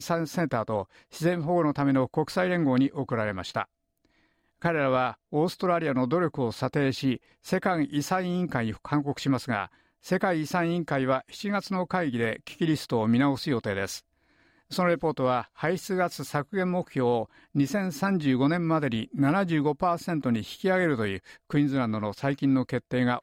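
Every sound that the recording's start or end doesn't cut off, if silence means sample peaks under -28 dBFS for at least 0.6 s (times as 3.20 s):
4.64–13.96 s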